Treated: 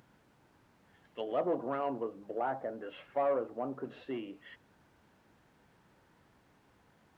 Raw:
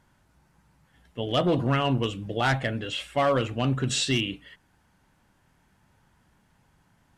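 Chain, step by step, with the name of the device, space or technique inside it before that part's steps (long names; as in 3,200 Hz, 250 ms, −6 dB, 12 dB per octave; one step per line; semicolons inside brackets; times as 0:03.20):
0:02.03–0:03.85: low-pass filter 1,300 Hz 12 dB per octave
treble cut that deepens with the level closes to 860 Hz, closed at −25 dBFS
aircraft cabin announcement (band-pass filter 450–3,000 Hz; soft clipping −20 dBFS, distortion −20 dB; brown noise bed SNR 17 dB)
high-pass filter 140 Hz 12 dB per octave
level −2 dB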